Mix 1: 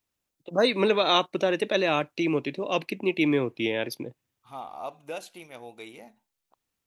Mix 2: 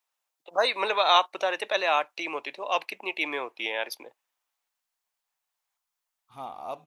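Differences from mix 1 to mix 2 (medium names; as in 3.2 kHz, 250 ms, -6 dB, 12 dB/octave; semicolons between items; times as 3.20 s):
first voice: add resonant high-pass 830 Hz, resonance Q 1.8; second voice: entry +1.85 s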